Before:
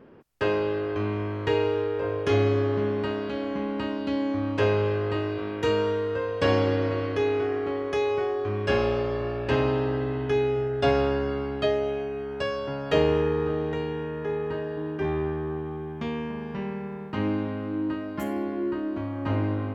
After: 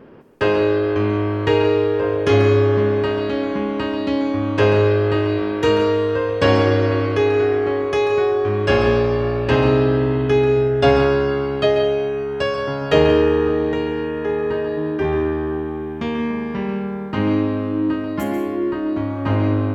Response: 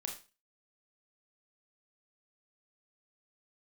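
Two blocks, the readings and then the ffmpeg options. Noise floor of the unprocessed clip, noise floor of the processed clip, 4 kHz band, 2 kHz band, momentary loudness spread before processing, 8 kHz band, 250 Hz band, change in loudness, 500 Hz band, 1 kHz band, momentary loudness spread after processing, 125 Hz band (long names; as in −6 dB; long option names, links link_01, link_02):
−34 dBFS, −26 dBFS, +8.0 dB, +8.5 dB, 8 LU, can't be measured, +8.5 dB, +8.5 dB, +8.5 dB, +7.5 dB, 8 LU, +8.5 dB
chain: -filter_complex "[0:a]asplit=2[link_01][link_02];[1:a]atrim=start_sample=2205,adelay=138[link_03];[link_02][link_03]afir=irnorm=-1:irlink=0,volume=-7dB[link_04];[link_01][link_04]amix=inputs=2:normalize=0,volume=7.5dB"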